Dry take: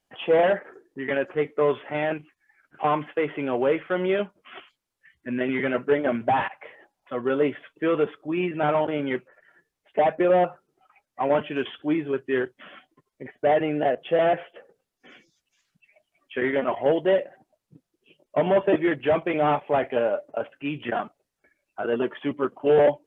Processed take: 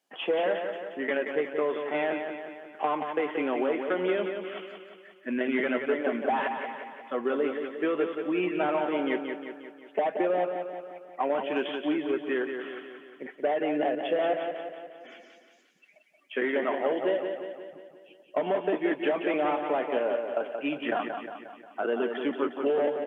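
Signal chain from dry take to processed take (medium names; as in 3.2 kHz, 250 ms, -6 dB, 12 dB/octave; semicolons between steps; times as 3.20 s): high-pass 220 Hz 24 dB/octave; compression, threshold -24 dBFS, peak gain reduction 9.5 dB; on a send: feedback delay 178 ms, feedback 55%, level -6.5 dB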